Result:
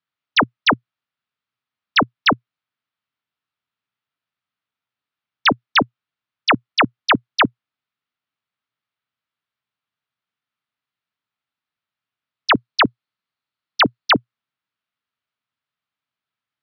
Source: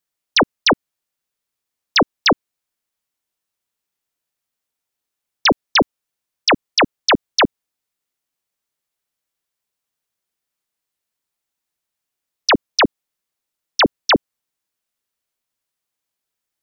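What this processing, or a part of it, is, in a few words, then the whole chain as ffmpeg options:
guitar cabinet: -filter_complex "[0:a]highpass=100,equalizer=frequency=120:width_type=q:width=4:gain=7,equalizer=frequency=360:width_type=q:width=4:gain=-7,equalizer=frequency=520:width_type=q:width=4:gain=-8,equalizer=frequency=790:width_type=q:width=4:gain=-3,equalizer=frequency=1300:width_type=q:width=4:gain=5,lowpass=frequency=3900:width=0.5412,lowpass=frequency=3900:width=1.3066,asettb=1/sr,asplit=3[link_01][link_02][link_03];[link_01]atrim=end=12.514[link_04];[link_02]atrim=start=12.51:end=14.12,asetpts=PTS-STARTPTS,afade=type=in:duration=0.004:curve=qsin,afade=type=out:start_time=1.606:duration=0.004:curve=qsin,equalizer=frequency=4300:width_type=o:width=0.2:gain=6[link_05];[link_03]atrim=start=14.116[link_06];[link_04][link_05]acrossfade=duration=0.004:curve1=hsin:curve2=qsin[link_07];[link_07][link_06]acrossfade=duration=0.004:curve1=qsin:curve2=hsin"

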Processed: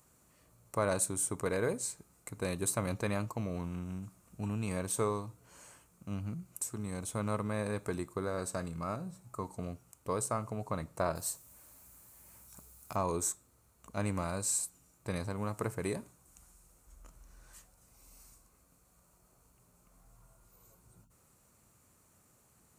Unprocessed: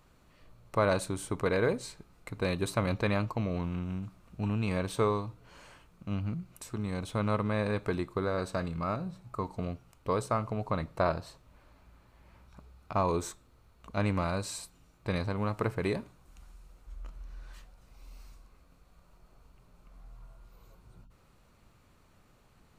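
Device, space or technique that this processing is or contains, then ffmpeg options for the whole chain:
budget condenser microphone: -filter_complex "[0:a]highpass=68,highshelf=frequency=5500:width_type=q:width=1.5:gain=12.5,asettb=1/sr,asplit=3[link_01][link_02][link_03];[link_01]atrim=end=11.154[link_04];[link_02]atrim=start=11.15:end=12.96,asetpts=PTS-STARTPTS,afade=type=in:duration=0.004:curve=qsin,afade=type=out:start_time=1.806:duration=0.004:curve=qsin,aemphasis=mode=production:type=75kf[link_05];[link_03]atrim=start=12.956[link_06];[link_04][link_05]acrossfade=duration=0.004:curve1=hsin:curve2=qsin[link_07];[link_07][link_06]acrossfade=duration=0.004:curve1=qsin:curve2=hsin,volume=-4.5dB"

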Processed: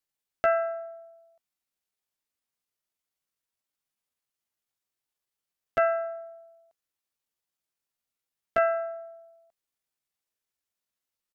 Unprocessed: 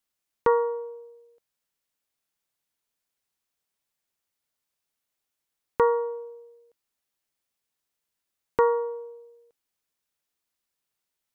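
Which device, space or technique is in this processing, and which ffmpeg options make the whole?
chipmunk voice: -af "asetrate=62367,aresample=44100,atempo=0.707107,volume=-3dB"

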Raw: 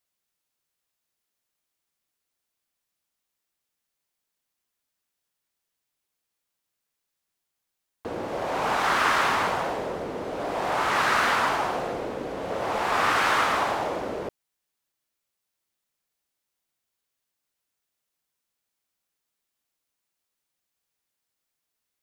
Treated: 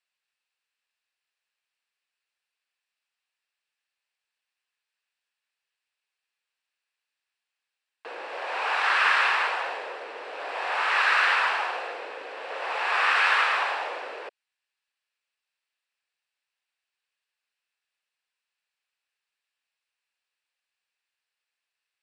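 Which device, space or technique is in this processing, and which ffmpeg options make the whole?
phone speaker on a table: -af "highpass=frequency=500:width=0.5412,highpass=frequency=500:width=1.3066,equalizer=frequency=630:width_type=q:width=4:gain=-5,equalizer=frequency=1700:width_type=q:width=4:gain=7,equalizer=frequency=2600:width_type=q:width=4:gain=10,equalizer=frequency=4200:width_type=q:width=4:gain=3,equalizer=frequency=6500:width_type=q:width=4:gain=-9,lowpass=frequency=8300:width=0.5412,lowpass=frequency=8300:width=1.3066,volume=-2.5dB"

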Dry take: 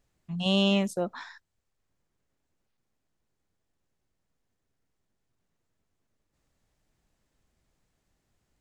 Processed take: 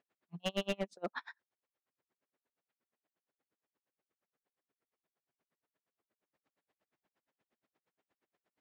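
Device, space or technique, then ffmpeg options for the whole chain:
helicopter radio: -filter_complex "[0:a]highpass=310,lowpass=2800,aeval=exprs='val(0)*pow(10,-40*(0.5-0.5*cos(2*PI*8.5*n/s))/20)':channel_layout=same,asoftclip=type=hard:threshold=-30dB,asettb=1/sr,asplit=3[link_01][link_02][link_03];[link_01]atrim=end=0.884[link_04];[link_02]atrim=start=0.88:end=1.29,asetpts=PTS-STARTPTS,afade=type=in:duration=0.004:curve=qsin,afade=type=out:start_time=0.406:duration=0.004:curve=qsin,equalizer=frequency=4700:width_type=o:width=2.4:gain=5.5[link_05];[link_03]atrim=start=1.286[link_06];[link_04][link_05]acrossfade=duration=0.004:curve1=hsin:curve2=qsin[link_07];[link_07][link_06]acrossfade=duration=0.004:curve1=qsin:curve2=hsin,volume=2.5dB"

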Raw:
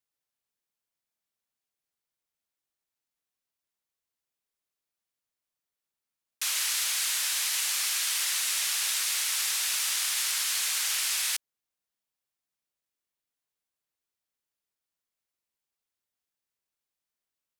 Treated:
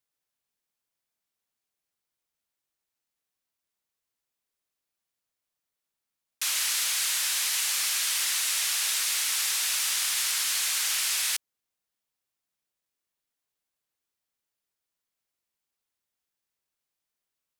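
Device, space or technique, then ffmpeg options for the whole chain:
parallel distortion: -filter_complex "[0:a]asplit=2[link_01][link_02];[link_02]asoftclip=type=hard:threshold=-30.5dB,volume=-11dB[link_03];[link_01][link_03]amix=inputs=2:normalize=0"

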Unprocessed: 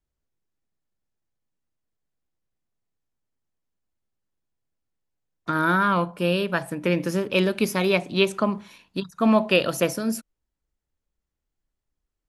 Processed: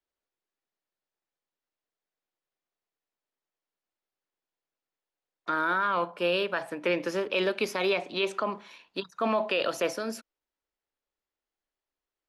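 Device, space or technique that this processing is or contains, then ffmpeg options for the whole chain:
DJ mixer with the lows and highs turned down: -filter_complex "[0:a]acrossover=split=330 5700:gain=0.1 1 0.2[link_01][link_02][link_03];[link_01][link_02][link_03]amix=inputs=3:normalize=0,alimiter=limit=-17.5dB:level=0:latency=1:release=25"

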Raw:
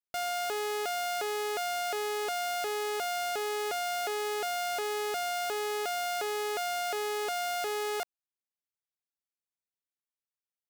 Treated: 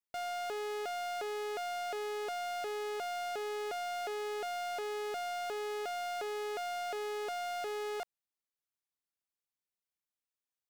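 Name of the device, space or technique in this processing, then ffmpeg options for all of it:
saturation between pre-emphasis and de-emphasis: -af "highshelf=frequency=7600:gain=10,asoftclip=type=tanh:threshold=-31.5dB,highshelf=frequency=7600:gain=-10,volume=-2dB"

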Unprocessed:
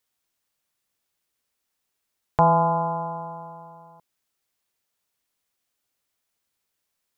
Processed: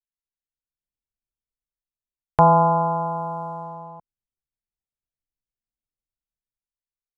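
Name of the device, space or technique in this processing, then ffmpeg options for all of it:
voice memo with heavy noise removal: -af "anlmdn=0.00251,dynaudnorm=framelen=120:gausssize=13:maxgain=11.5dB,volume=-1dB"

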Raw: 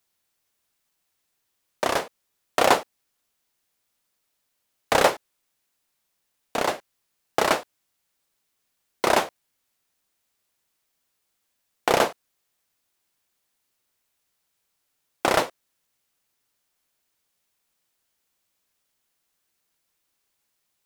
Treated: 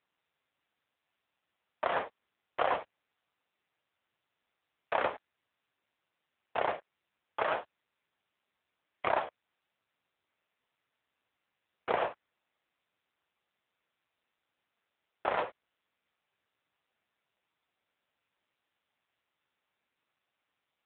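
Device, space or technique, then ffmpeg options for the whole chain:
voicemail: -af "highpass=430,lowpass=2600,acompressor=threshold=-21dB:ratio=12" -ar 8000 -c:a libopencore_amrnb -b:a 6700

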